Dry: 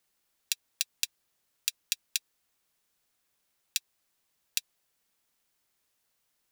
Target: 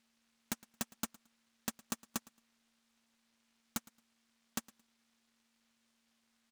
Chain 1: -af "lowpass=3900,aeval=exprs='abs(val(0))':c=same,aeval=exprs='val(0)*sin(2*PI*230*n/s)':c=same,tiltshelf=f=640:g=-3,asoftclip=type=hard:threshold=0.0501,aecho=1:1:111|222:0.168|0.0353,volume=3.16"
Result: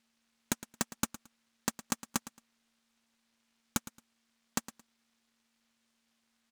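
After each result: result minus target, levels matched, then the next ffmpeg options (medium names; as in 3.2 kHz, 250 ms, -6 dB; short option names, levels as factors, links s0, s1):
echo-to-direct +6.5 dB; hard clipper: distortion -5 dB
-af "lowpass=3900,aeval=exprs='abs(val(0))':c=same,aeval=exprs='val(0)*sin(2*PI*230*n/s)':c=same,tiltshelf=f=640:g=-3,asoftclip=type=hard:threshold=0.0501,aecho=1:1:111|222:0.0794|0.0167,volume=3.16"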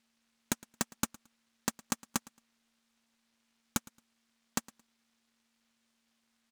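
hard clipper: distortion -5 dB
-af "lowpass=3900,aeval=exprs='abs(val(0))':c=same,aeval=exprs='val(0)*sin(2*PI*230*n/s)':c=same,tiltshelf=f=640:g=-3,asoftclip=type=hard:threshold=0.0133,aecho=1:1:111|222:0.0794|0.0167,volume=3.16"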